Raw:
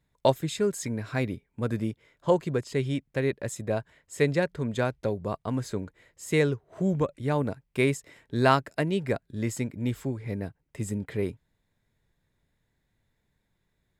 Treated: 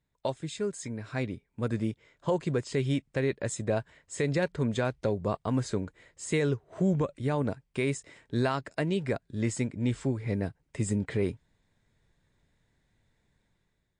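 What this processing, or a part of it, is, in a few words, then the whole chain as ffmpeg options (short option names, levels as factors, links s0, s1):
low-bitrate web radio: -af "dynaudnorm=f=960:g=3:m=3.16,alimiter=limit=0.251:level=0:latency=1:release=98,volume=0.501" -ar 22050 -c:a libmp3lame -b:a 48k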